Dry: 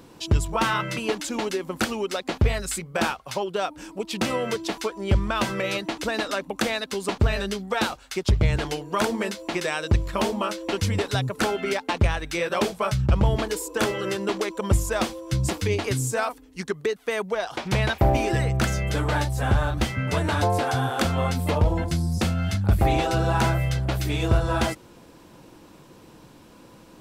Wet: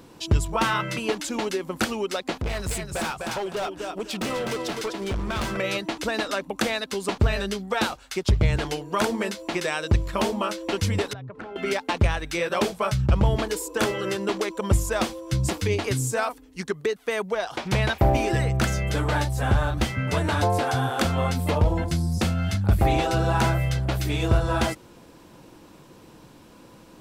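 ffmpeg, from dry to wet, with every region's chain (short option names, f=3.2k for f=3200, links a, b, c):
-filter_complex "[0:a]asettb=1/sr,asplit=3[a][b][c];[a]atrim=end=2.344[d];[b]atrim=start=2.34:end=5.57,asetpts=PTS-STARTPTS,afade=t=in:d=0.004:c=qsin,afade=t=out:st=3.226:d=0.004:c=qsin,aecho=1:1:252|504|756:0.447|0.107|0.0257,atrim=end_sample=142443,volume=24.5dB,asoftclip=hard,volume=-24.5dB[e];[c]atrim=start=5.566[f];[d][e]acrossfade=d=0.004:c1=hsin:c2=qsin[g];[g][f]acrossfade=d=0.004:c1=qsin:c2=hsin,asettb=1/sr,asplit=3[h][i][j];[h]atrim=end=11.134[k];[i]atrim=start=11.13:end=11.56,asetpts=PTS-STARTPTS,afade=t=in:d=0.004:c=qsin,afade=t=out:st=0.426:d=0.004:c=qsin,lowpass=1.9k,acompressor=threshold=-34dB:ratio=10:attack=3.2:release=140:knee=1:detection=peak[l];[j]atrim=start=11.556[m];[k][l]acrossfade=d=0.004:c1=hsin:c2=qsin[n];[n][m]acrossfade=d=0.004:c1=qsin:c2=hsin"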